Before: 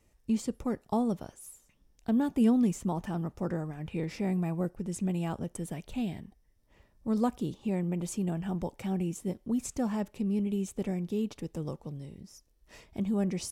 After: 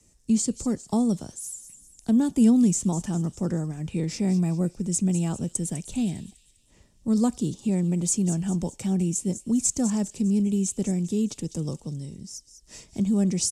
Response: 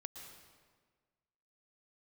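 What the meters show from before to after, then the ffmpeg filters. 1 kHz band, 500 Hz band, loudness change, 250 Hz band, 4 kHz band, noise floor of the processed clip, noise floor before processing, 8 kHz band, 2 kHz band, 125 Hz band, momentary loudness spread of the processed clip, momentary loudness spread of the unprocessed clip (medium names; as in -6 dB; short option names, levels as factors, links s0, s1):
-0.5 dB, +2.5 dB, +7.0 dB, +7.0 dB, +9.0 dB, -60 dBFS, -67 dBFS, +16.0 dB, +0.5 dB, +7.5 dB, 13 LU, 10 LU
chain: -filter_complex "[0:a]lowpass=f=7800:t=q:w=1.9,bass=f=250:g=4,treble=f=4000:g=14,aeval=exprs='0.376*(cos(1*acos(clip(val(0)/0.376,-1,1)))-cos(1*PI/2))+0.00841*(cos(5*acos(clip(val(0)/0.376,-1,1)))-cos(5*PI/2))':c=same,acrossover=split=120|410|2600[s0][s1][s2][s3];[s1]acontrast=64[s4];[s3]aecho=1:1:201|402|603|804|1005:0.282|0.132|0.0623|0.0293|0.0138[s5];[s0][s4][s2][s5]amix=inputs=4:normalize=0,volume=0.794"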